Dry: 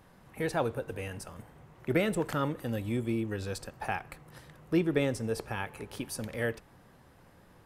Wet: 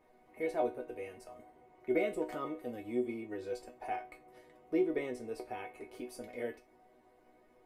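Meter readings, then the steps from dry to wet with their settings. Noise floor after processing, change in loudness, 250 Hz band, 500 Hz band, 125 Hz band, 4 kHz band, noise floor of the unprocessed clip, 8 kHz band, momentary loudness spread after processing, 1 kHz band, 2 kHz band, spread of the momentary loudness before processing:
-66 dBFS, -5.0 dB, -6.0 dB, -2.5 dB, -21.0 dB, -13.0 dB, -59 dBFS, under -10 dB, 15 LU, -3.5 dB, -8.5 dB, 18 LU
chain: resonator bank B3 major, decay 0.21 s; small resonant body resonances 420/640/2100 Hz, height 15 dB, ringing for 20 ms; gain +2 dB

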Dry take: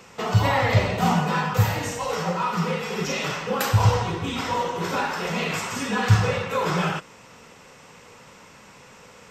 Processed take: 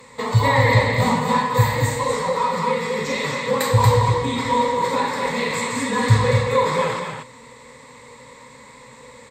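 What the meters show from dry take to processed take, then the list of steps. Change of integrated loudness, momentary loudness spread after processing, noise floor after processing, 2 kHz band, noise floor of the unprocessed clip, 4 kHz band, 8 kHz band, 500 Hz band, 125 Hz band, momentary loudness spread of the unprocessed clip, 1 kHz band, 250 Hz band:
+4.0 dB, 7 LU, -45 dBFS, +4.0 dB, -49 dBFS, +2.5 dB, +3.5 dB, +6.0 dB, +3.0 dB, 7 LU, +5.0 dB, +2.5 dB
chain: ripple EQ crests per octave 1, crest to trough 14 dB; on a send: echo 0.233 s -5 dB

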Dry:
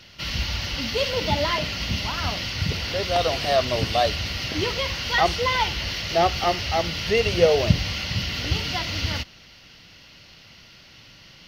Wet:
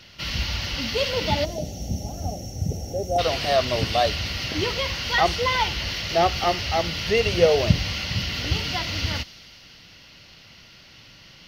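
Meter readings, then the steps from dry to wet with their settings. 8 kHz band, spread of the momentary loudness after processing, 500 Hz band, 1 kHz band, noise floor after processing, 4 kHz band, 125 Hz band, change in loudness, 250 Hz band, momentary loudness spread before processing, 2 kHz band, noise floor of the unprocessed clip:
0.0 dB, 9 LU, 0.0 dB, -0.5 dB, -49 dBFS, -0.5 dB, 0.0 dB, -0.5 dB, 0.0 dB, 6 LU, -0.5 dB, -49 dBFS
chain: spectral gain 1.44–3.19, 840–5400 Hz -27 dB; thin delay 87 ms, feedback 82%, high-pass 3800 Hz, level -18 dB

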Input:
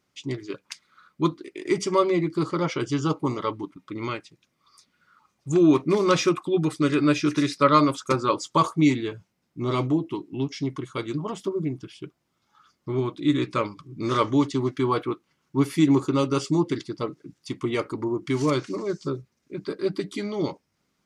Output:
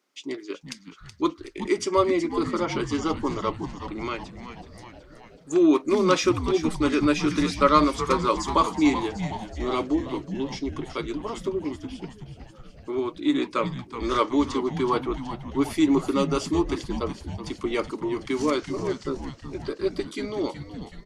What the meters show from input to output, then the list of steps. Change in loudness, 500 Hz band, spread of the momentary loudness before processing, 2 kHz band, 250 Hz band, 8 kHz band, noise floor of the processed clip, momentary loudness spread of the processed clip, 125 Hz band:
-0.5 dB, 0.0 dB, 16 LU, +0.5 dB, -1.0 dB, +0.5 dB, -49 dBFS, 15 LU, -5.5 dB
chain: HPF 250 Hz 24 dB/oct; on a send: frequency-shifting echo 0.374 s, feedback 64%, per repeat -120 Hz, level -10.5 dB

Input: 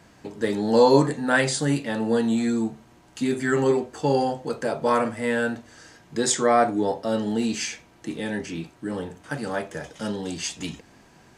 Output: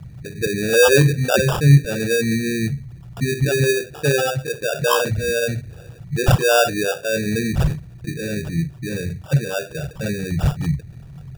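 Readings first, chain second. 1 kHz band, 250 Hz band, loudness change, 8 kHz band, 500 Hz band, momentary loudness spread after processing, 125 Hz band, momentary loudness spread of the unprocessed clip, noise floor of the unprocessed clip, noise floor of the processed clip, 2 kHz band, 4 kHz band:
-1.0 dB, +1.0 dB, +4.5 dB, +4.0 dB, +3.5 dB, 14 LU, +14.5 dB, 14 LU, -54 dBFS, -40 dBFS, +7.0 dB, +7.0 dB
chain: formant sharpening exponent 3; sample-and-hold 21×; resonant low shelf 190 Hz +10.5 dB, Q 3; gain +4.5 dB

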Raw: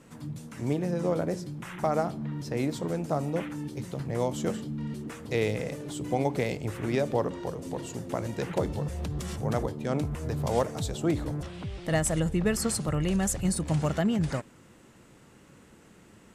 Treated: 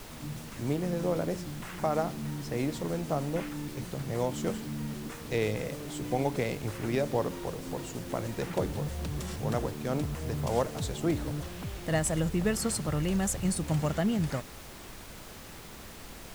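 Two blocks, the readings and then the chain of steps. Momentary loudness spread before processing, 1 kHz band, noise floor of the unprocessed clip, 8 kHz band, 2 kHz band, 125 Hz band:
9 LU, -1.5 dB, -56 dBFS, -1.5 dB, -1.0 dB, -2.0 dB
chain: added noise pink -44 dBFS; gain -2 dB

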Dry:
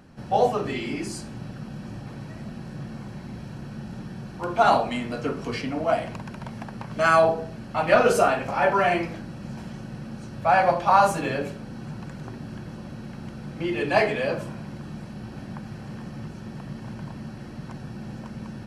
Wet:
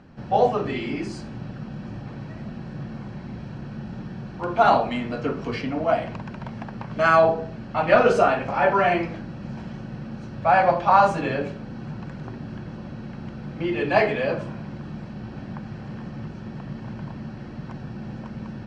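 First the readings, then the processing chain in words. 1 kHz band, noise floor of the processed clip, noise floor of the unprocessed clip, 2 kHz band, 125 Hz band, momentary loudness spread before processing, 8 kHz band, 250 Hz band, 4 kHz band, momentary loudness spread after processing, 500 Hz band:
+1.5 dB, -38 dBFS, -40 dBFS, +1.0 dB, +2.0 dB, 18 LU, n/a, +2.0 dB, -1.0 dB, 18 LU, +1.5 dB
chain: air absorption 130 m; gain +2 dB

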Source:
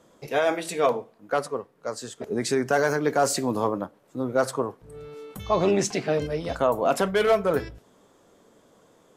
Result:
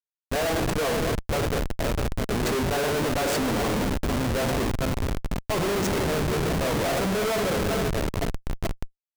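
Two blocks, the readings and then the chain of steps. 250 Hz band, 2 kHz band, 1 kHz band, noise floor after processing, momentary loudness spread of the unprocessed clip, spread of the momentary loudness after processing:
+2.5 dB, +1.5 dB, -1.5 dB, under -85 dBFS, 13 LU, 6 LU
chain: regenerating reverse delay 0.243 s, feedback 63%, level -9 dB; delay with a stepping band-pass 0.664 s, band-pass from 290 Hz, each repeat 1.4 oct, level -8 dB; Schroeder reverb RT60 0.43 s, combs from 31 ms, DRR 7.5 dB; Schmitt trigger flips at -26 dBFS

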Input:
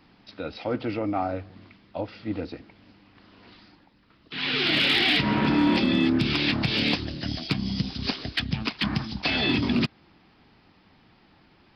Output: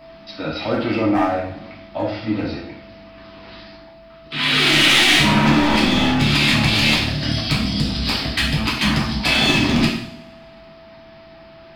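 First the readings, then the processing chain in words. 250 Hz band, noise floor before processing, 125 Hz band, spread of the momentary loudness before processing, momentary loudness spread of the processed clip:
+6.0 dB, -59 dBFS, +8.5 dB, 15 LU, 16 LU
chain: one-sided fold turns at -19 dBFS; bell 440 Hz -9.5 dB 0.31 oct; in parallel at -3 dB: soft clip -28 dBFS, distortion -8 dB; on the sum: whine 660 Hz -47 dBFS; two-slope reverb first 0.62 s, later 1.6 s, from -19 dB, DRR -5 dB; gain +1.5 dB

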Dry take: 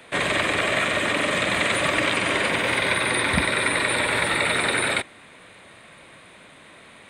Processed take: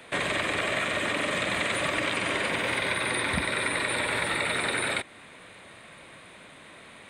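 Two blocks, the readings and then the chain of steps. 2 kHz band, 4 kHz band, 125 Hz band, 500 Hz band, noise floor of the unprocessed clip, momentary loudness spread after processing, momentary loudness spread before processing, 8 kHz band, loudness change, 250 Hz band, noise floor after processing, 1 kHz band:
-5.5 dB, -5.5 dB, -5.5 dB, -5.5 dB, -48 dBFS, 1 LU, 1 LU, -5.5 dB, -5.5 dB, -5.5 dB, -49 dBFS, -5.5 dB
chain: compressor 2:1, threshold -27 dBFS, peak gain reduction 6.5 dB; gain -1 dB

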